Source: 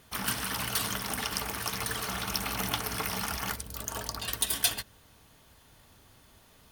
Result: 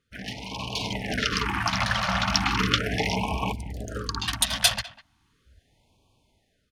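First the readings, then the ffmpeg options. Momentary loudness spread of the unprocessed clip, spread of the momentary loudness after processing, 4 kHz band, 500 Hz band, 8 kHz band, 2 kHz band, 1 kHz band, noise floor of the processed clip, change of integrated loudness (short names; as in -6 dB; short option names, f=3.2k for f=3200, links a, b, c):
7 LU, 12 LU, +7.0 dB, +7.5 dB, +1.0 dB, +7.5 dB, +7.5 dB, -70 dBFS, +5.5 dB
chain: -filter_complex "[0:a]adynamicsmooth=sensitivity=2.5:basefreq=7.8k,afwtdn=0.01,dynaudnorm=f=390:g=5:m=12dB,asplit=2[a][b];[b]adelay=200,highpass=300,lowpass=3.4k,asoftclip=type=hard:threshold=-12dB,volume=-18dB[c];[a][c]amix=inputs=2:normalize=0,afftfilt=real='re*(1-between(b*sr/1024,350*pow(1600/350,0.5+0.5*sin(2*PI*0.37*pts/sr))/1.41,350*pow(1600/350,0.5+0.5*sin(2*PI*0.37*pts/sr))*1.41))':imag='im*(1-between(b*sr/1024,350*pow(1600/350,0.5+0.5*sin(2*PI*0.37*pts/sr))/1.41,350*pow(1600/350,0.5+0.5*sin(2*PI*0.37*pts/sr))*1.41))':win_size=1024:overlap=0.75"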